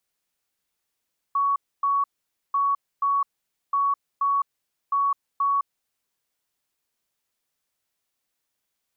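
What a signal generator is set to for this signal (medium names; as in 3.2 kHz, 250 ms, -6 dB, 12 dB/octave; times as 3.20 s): beep pattern sine 1.12 kHz, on 0.21 s, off 0.27 s, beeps 2, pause 0.50 s, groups 4, -19 dBFS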